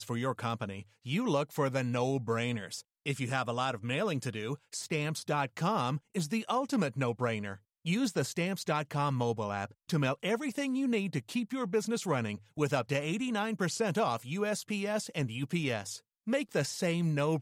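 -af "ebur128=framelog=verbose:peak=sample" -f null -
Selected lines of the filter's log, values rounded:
Integrated loudness:
  I:         -33.0 LUFS
  Threshold: -43.0 LUFS
Loudness range:
  LRA:         1.1 LU
  Threshold: -53.0 LUFS
  LRA low:   -33.6 LUFS
  LRA high:  -32.5 LUFS
Sample peak:
  Peak:      -16.7 dBFS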